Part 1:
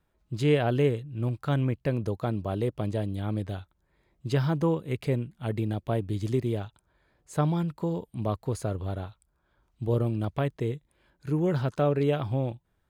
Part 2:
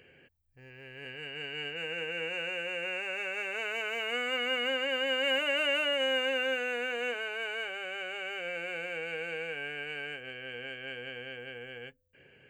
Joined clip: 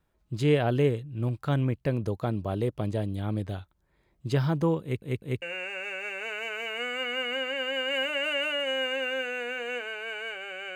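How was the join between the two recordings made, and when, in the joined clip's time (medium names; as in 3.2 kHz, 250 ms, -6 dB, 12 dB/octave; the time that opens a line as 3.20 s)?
part 1
4.82 s: stutter in place 0.20 s, 3 plays
5.42 s: go over to part 2 from 2.75 s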